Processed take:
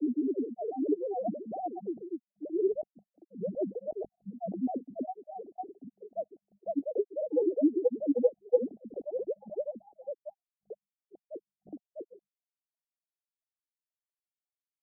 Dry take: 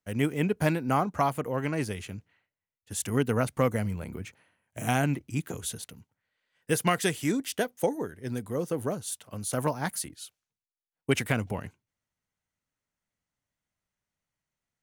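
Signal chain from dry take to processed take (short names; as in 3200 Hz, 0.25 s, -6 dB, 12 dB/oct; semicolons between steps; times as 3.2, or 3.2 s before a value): sine-wave speech; steep low-pass 740 Hz 96 dB/oct; notches 50/100/150/200 Hz; grains 0.1 s, grains 20/s, spray 0.744 s; gain -1.5 dB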